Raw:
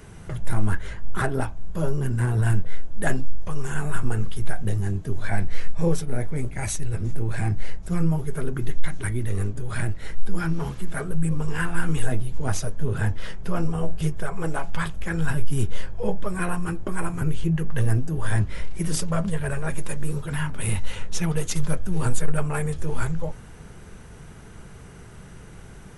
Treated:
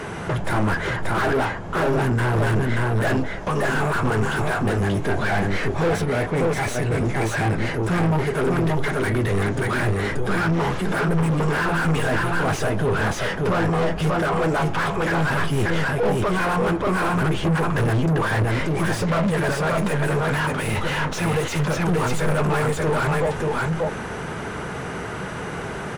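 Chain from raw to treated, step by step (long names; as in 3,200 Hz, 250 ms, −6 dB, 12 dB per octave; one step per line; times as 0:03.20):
single-tap delay 582 ms −5 dB
mid-hump overdrive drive 38 dB, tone 1,200 Hz, clips at −4.5 dBFS
level −7 dB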